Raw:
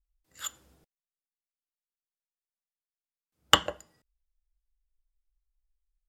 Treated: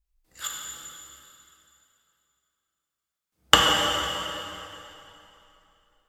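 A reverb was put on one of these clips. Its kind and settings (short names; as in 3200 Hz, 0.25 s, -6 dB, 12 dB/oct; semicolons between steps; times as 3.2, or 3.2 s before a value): plate-style reverb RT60 3 s, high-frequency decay 0.9×, DRR -2 dB; gain +3.5 dB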